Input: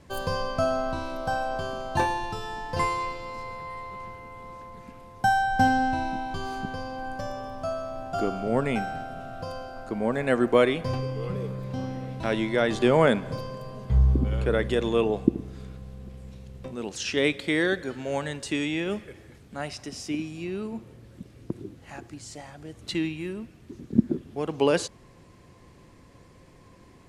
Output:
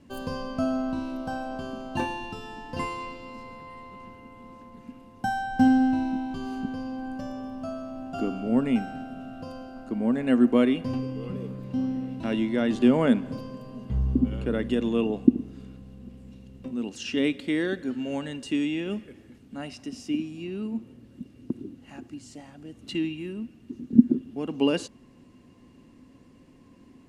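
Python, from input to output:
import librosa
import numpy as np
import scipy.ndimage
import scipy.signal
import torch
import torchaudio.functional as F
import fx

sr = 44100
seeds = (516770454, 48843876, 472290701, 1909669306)

y = fx.small_body(x, sr, hz=(250.0, 2800.0), ring_ms=50, db=16)
y = F.gain(torch.from_numpy(y), -7.0).numpy()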